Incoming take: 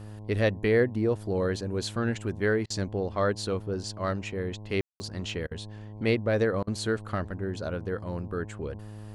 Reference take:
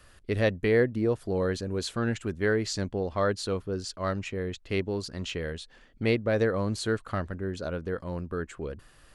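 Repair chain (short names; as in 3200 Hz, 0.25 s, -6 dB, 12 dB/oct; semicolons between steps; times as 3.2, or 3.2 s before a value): de-hum 105.7 Hz, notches 10; room tone fill 4.81–5; interpolate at 2.66/5.47/6.63, 41 ms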